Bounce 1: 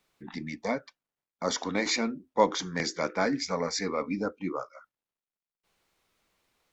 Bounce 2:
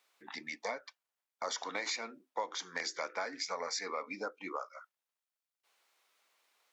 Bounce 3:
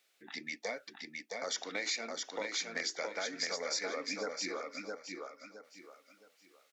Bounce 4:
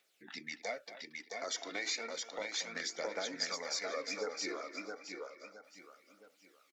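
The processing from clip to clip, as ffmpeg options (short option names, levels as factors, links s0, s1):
-af "highpass=640,acompressor=threshold=0.0178:ratio=6,volume=1.12"
-filter_complex "[0:a]equalizer=f=1000:t=o:w=0.59:g=-14.5,asplit=2[s0][s1];[s1]aecho=0:1:666|1332|1998|2664:0.668|0.201|0.0602|0.018[s2];[s0][s2]amix=inputs=2:normalize=0,volume=1.26"
-filter_complex "[0:a]aphaser=in_gain=1:out_gain=1:delay=3.2:decay=0.45:speed=0.32:type=triangular,asplit=2[s0][s1];[s1]adelay=230,highpass=300,lowpass=3400,asoftclip=type=hard:threshold=0.0398,volume=0.224[s2];[s0][s2]amix=inputs=2:normalize=0,volume=0.75"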